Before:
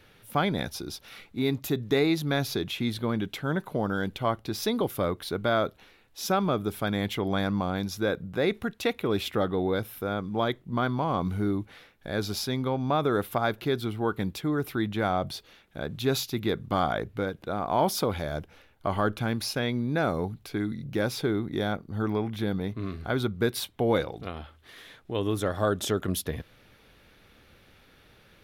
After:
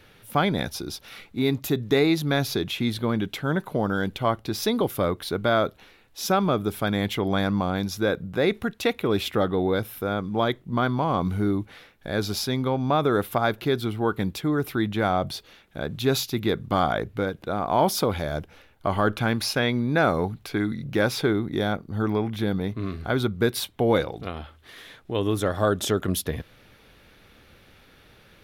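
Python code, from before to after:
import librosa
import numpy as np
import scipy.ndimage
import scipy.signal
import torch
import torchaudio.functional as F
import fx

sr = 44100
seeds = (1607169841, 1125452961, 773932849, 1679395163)

y = fx.peak_eq(x, sr, hz=1500.0, db=4.0, octaves=2.8, at=(19.07, 21.33))
y = y * librosa.db_to_amplitude(3.5)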